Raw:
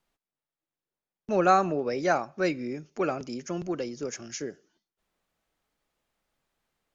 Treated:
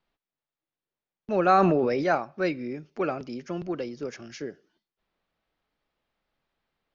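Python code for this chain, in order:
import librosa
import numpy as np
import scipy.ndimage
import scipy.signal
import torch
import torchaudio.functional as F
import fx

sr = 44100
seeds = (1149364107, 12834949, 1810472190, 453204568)

y = scipy.signal.sosfilt(scipy.signal.butter(4, 4700.0, 'lowpass', fs=sr, output='sos'), x)
y = fx.sustainer(y, sr, db_per_s=20.0, at=(1.49, 2.15))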